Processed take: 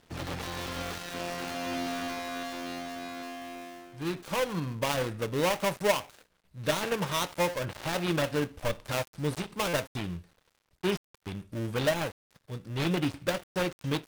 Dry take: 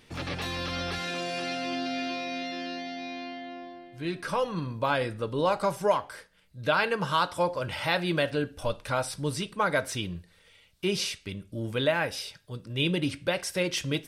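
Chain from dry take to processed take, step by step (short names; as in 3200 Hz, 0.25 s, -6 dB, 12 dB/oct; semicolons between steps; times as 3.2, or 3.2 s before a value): switching dead time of 0.3 ms; stuck buffer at 9.68, samples 256, times 8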